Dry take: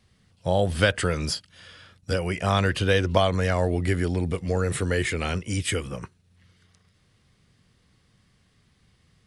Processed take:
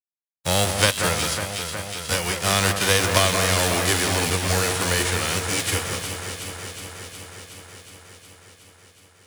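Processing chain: spectral whitening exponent 0.3; crossover distortion -47 dBFS; echo with dull and thin repeats by turns 0.183 s, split 2200 Hz, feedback 85%, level -6.5 dB; gain +1.5 dB

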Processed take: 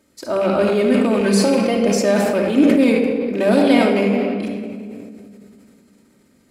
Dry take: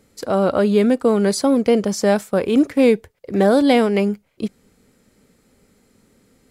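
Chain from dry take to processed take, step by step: rattling part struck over -23 dBFS, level -19 dBFS; HPF 140 Hz 6 dB/oct; 1.2–1.77 comb 5.8 ms, depth 80%; shoebox room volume 3900 m³, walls mixed, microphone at 2.7 m; sustainer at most 24 dB/s; gain -4 dB

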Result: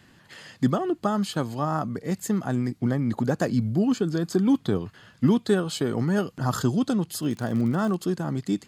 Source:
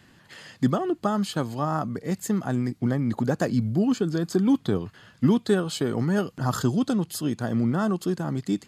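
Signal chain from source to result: 7.22–8.05 crackle 95/s -> 39/s -31 dBFS

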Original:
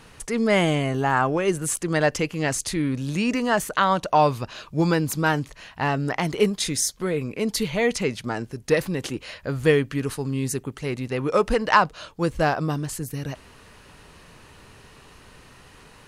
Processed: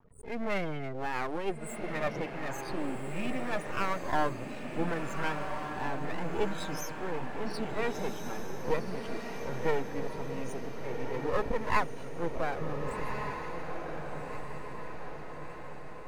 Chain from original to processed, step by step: spectral swells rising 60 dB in 0.31 s; high shelf 10000 Hz -9.5 dB; loudest bins only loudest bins 16; half-wave rectifier; diffused feedback echo 1.489 s, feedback 55%, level -5 dB; gain -6.5 dB

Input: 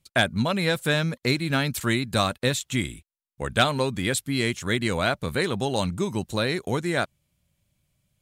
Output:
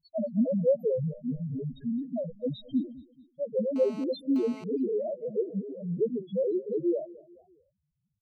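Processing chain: 1.09–2.75 minimum comb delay 1.3 ms; graphic EQ 125/250/500/1000/2000/4000/8000 Hz -3/+7/+9/-7/+5/+6/-7 dB; 5.43–5.99 negative-ratio compressor -28 dBFS, ratio -1; loudest bins only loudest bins 1; feedback echo 0.217 s, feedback 44%, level -21 dB; 3.76–4.64 GSM buzz -46 dBFS; record warp 45 rpm, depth 250 cents

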